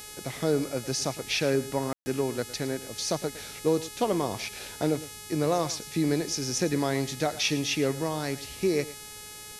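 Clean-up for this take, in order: de-hum 422.3 Hz, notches 29; room tone fill 1.93–2.06; inverse comb 0.109 s -16.5 dB

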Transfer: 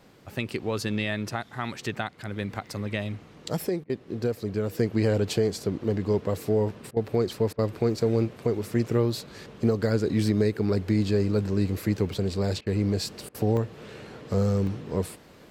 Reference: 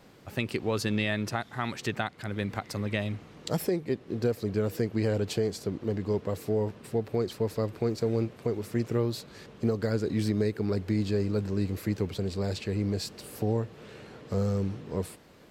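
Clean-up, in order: interpolate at 2.67/12.13/12.66/13.57/14.67, 1.5 ms; interpolate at 3.84/6.91/7.53/12.61/13.29, 54 ms; gain 0 dB, from 4.79 s -4 dB

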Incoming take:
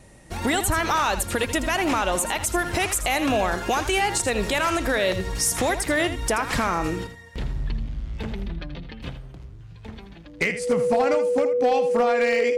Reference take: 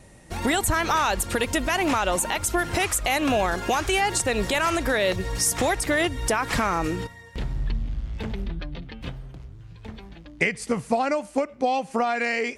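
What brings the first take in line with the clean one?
clip repair -14 dBFS; notch 490 Hz, Q 30; inverse comb 81 ms -11 dB

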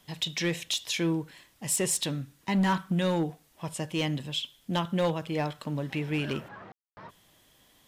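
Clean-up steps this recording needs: clip repair -20.5 dBFS; room tone fill 6.72–6.97

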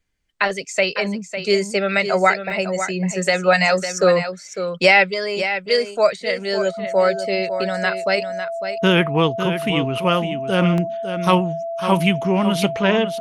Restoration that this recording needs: notch 670 Hz, Q 30; interpolate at 2.5/7.61/10.78, 1 ms; inverse comb 0.552 s -9.5 dB

